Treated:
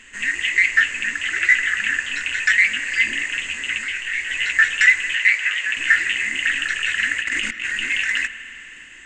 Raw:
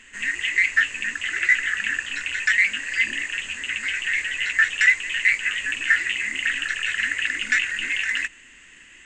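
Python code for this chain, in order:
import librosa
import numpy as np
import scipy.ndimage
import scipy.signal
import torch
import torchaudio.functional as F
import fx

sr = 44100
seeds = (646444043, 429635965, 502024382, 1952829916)

y = fx.bandpass_edges(x, sr, low_hz=500.0, high_hz=7100.0, at=(5.15, 5.77))
y = fx.over_compress(y, sr, threshold_db=-28.0, ratio=-0.5, at=(7.21, 7.66))
y = fx.rev_spring(y, sr, rt60_s=3.3, pass_ms=(49,), chirp_ms=60, drr_db=11.5)
y = fx.detune_double(y, sr, cents=fx.line((3.83, 38.0), (4.28, 55.0)), at=(3.83, 4.28), fade=0.02)
y = y * librosa.db_to_amplitude(3.0)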